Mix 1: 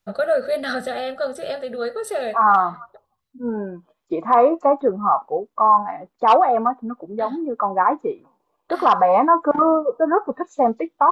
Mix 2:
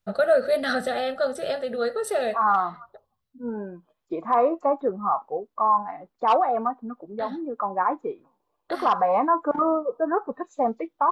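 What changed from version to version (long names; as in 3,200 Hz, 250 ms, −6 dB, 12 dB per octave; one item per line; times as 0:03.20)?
second voice −6.0 dB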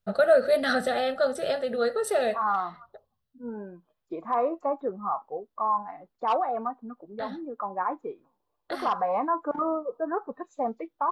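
second voice −5.5 dB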